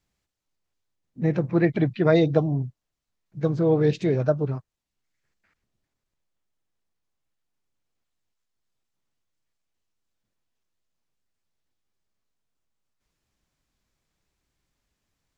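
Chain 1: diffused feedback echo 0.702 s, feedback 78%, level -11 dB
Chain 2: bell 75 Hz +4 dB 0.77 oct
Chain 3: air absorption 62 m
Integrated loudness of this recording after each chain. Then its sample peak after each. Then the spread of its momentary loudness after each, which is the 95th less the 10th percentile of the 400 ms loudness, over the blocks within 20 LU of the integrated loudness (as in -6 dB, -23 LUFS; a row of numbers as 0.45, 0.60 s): -25.5, -23.0, -23.0 LUFS; -5.0, -5.0, -5.5 dBFS; 22, 9, 10 LU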